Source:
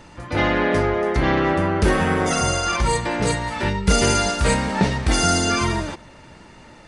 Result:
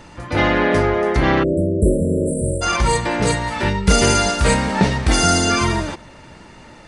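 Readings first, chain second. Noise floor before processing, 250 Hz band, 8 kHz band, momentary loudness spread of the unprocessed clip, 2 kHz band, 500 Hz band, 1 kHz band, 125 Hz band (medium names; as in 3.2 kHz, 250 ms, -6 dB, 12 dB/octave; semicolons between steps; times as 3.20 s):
-45 dBFS, +3.0 dB, +2.5 dB, 5 LU, +2.0 dB, +3.0 dB, +2.0 dB, +3.0 dB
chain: spectral selection erased 1.43–2.62 s, 660–7400 Hz; trim +3 dB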